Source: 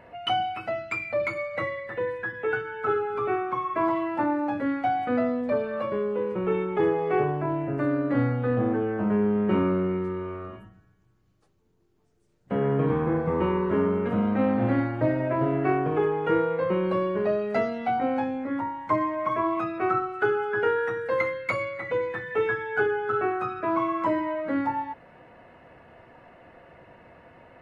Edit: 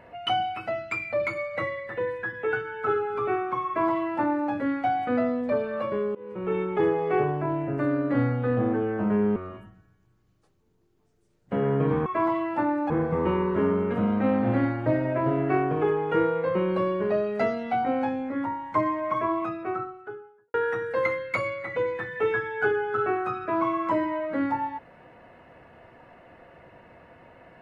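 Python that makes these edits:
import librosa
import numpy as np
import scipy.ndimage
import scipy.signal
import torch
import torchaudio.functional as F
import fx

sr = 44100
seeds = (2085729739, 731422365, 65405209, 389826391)

y = fx.studio_fade_out(x, sr, start_s=19.24, length_s=1.45)
y = fx.edit(y, sr, fx.duplicate(start_s=3.67, length_s=0.84, to_s=13.05),
    fx.fade_in_from(start_s=6.15, length_s=0.46, floor_db=-23.5),
    fx.cut(start_s=9.36, length_s=0.99), tone=tone)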